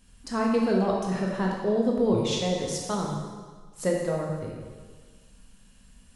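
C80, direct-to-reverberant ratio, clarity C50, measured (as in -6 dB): 3.0 dB, -2.0 dB, 1.0 dB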